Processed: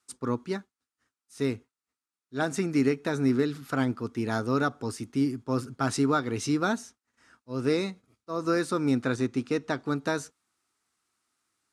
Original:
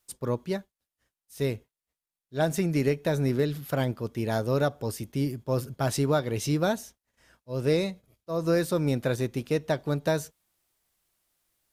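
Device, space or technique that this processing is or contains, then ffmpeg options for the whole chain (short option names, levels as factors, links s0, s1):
car door speaker: -filter_complex "[0:a]asettb=1/sr,asplit=3[s0][s1][s2];[s0]atrim=end=9.024[s3];[s1]atrim=start=9.02:end=9.86,asetpts=PTS-STARTPTS,afade=t=in:d=0.004:c=qsin,afade=t=out:st=0.836:d=0.004:c=qsin,lowpass=9600[s4];[s2]atrim=start=9.856[s5];[s3][s4]acrossfade=d=0.004:c1=hsin:c2=qsin[s6];[s6][s5]acrossfade=d=0.004:c1=qsin:c2=hsin,highpass=110,equalizer=f=160:t=q:w=4:g=-8,equalizer=f=260:t=q:w=4:g=7,equalizer=f=580:t=q:w=4:g=-10,equalizer=f=1300:t=q:w=4:g=9,equalizer=f=3200:t=q:w=4:g=-4,lowpass=f=9500:w=0.5412,lowpass=f=9500:w=1.3066"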